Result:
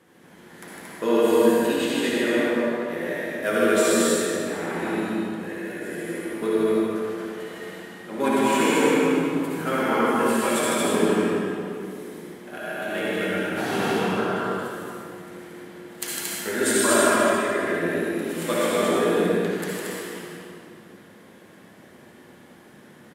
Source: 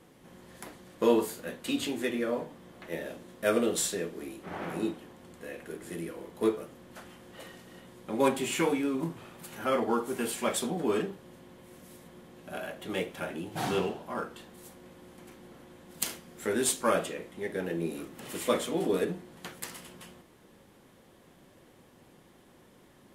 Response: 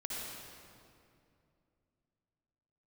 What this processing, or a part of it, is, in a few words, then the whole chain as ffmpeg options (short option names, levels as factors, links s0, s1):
stadium PA: -filter_complex "[0:a]asettb=1/sr,asplit=3[s0][s1][s2];[s0]atrim=end=16.604[s3];[s1]atrim=start=16.6:end=17.66,asetpts=PTS-STARTPTS,afade=t=in:d=0.004:c=qsin,afade=t=out:st=1.056:d=0.004:c=qsin,aecho=1:1:3:0.64,atrim=end_sample=46746[s4];[s2]atrim=start=17.656[s5];[s3][s4]acrossfade=d=0.004:c1=hsin:c2=qsin[s6];[s6][s5]acrossfade=d=0.004:c1=qsin:c2=hsin,highpass=120,equalizer=f=1700:t=o:w=0.63:g=6.5,aecho=1:1:154.5|227.4:0.631|0.708[s7];[1:a]atrim=start_sample=2205[s8];[s7][s8]afir=irnorm=-1:irlink=0,volume=1.5"